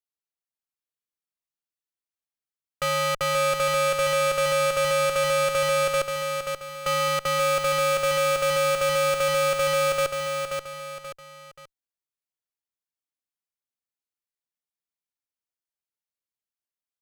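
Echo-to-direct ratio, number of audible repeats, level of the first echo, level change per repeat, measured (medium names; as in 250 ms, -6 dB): -4.5 dB, 3, -5.0 dB, -8.0 dB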